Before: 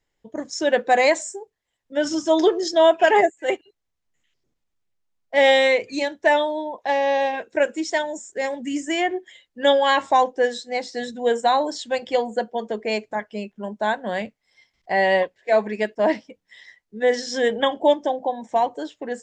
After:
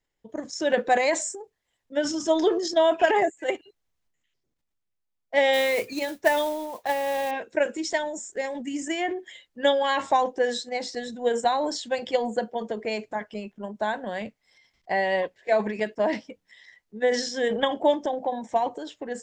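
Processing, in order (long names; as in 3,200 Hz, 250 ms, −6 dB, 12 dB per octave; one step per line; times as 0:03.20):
0:05.53–0:07.31: noise that follows the level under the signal 18 dB
transient designer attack +5 dB, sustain +9 dB
level −7 dB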